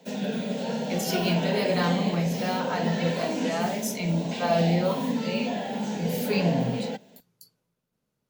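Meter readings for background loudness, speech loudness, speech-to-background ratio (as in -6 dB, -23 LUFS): -30.0 LUFS, -28.5 LUFS, 1.5 dB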